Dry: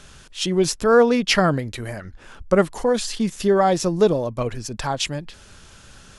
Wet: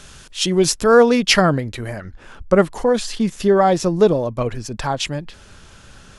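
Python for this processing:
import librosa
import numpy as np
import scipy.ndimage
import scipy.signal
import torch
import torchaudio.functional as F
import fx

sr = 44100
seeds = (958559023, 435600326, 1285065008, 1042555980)

y = fx.high_shelf(x, sr, hz=3800.0, db=fx.steps((0.0, 3.5), (1.4, -5.0)))
y = y * librosa.db_to_amplitude(3.0)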